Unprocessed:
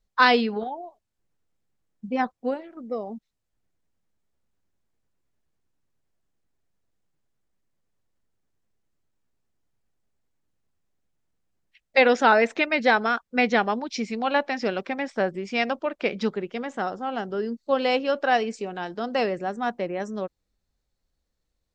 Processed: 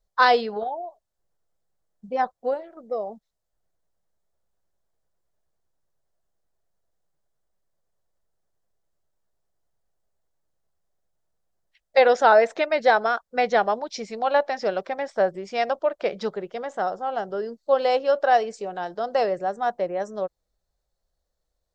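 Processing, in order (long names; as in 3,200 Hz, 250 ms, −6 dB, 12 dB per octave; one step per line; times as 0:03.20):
graphic EQ with 15 bands 100 Hz −6 dB, 250 Hz −11 dB, 630 Hz +7 dB, 2,500 Hz −8 dB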